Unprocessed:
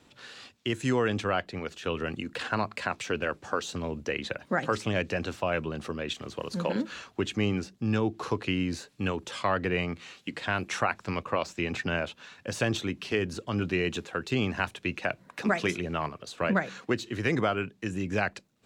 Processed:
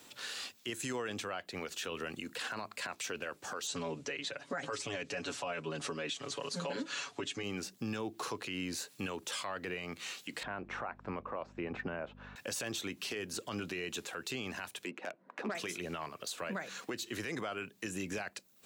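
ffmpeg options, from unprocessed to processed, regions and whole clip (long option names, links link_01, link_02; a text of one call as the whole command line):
ffmpeg -i in.wav -filter_complex "[0:a]asettb=1/sr,asplit=3[link_01][link_02][link_03];[link_01]atrim=end=3.674[link_04];[link_02]atrim=start=3.67:end=7.43,asetpts=PTS-STARTPTS,afade=type=in:duration=0.004:curve=qsin,afade=type=out:start_time=3.756:duration=0.004:curve=qsin,lowpass=frequency=8600:width=0.5412,lowpass=frequency=8600:width=1.3066,aecho=1:1:7.1:0.99,atrim=end_sample=165816[link_05];[link_03]atrim=start=7.426[link_06];[link_04][link_05]acrossfade=duration=0.004:curve1=hsin:curve2=qsin[link_07];[link_07][link_06]acrossfade=duration=0.004:curve1=qsin:curve2=hsin,asettb=1/sr,asplit=3[link_08][link_09][link_10];[link_08]atrim=end=10.434[link_11];[link_09]atrim=start=10.43:end=12.36,asetpts=PTS-STARTPTS,afade=type=in:duration=0.004:curve=qsin,afade=type=out:start_time=1.926:duration=0.004:curve=qsin,lowpass=1200,aeval=exprs='val(0)+0.00708*(sin(2*PI*50*n/s)+sin(2*PI*2*50*n/s)/2+sin(2*PI*3*50*n/s)/3+sin(2*PI*4*50*n/s)/4+sin(2*PI*5*50*n/s)/5)':channel_layout=same[link_12];[link_10]atrim=start=12.356[link_13];[link_11][link_12]acrossfade=duration=0.004:curve1=hsin:curve2=qsin[link_14];[link_14][link_13]acrossfade=duration=0.004:curve1=qsin:curve2=hsin,asettb=1/sr,asplit=3[link_15][link_16][link_17];[link_15]atrim=end=14.854[link_18];[link_16]atrim=start=14.85:end=15.55,asetpts=PTS-STARTPTS,afade=type=in:duration=0.004:curve=qsin,afade=type=out:start_time=0.696:duration=0.004:curve=qsin,highpass=frequency=200:width=0.5412,highpass=frequency=200:width=1.3066,adynamicsmooth=sensitivity=1:basefreq=1200[link_19];[link_17]atrim=start=15.546[link_20];[link_18][link_19]acrossfade=duration=0.004:curve1=hsin:curve2=qsin[link_21];[link_21][link_20]acrossfade=duration=0.004:curve1=qsin:curve2=hsin,aemphasis=mode=production:type=bsi,acompressor=threshold=-38dB:ratio=3,alimiter=level_in=7dB:limit=-24dB:level=0:latency=1:release=12,volume=-7dB,volume=2dB" out.wav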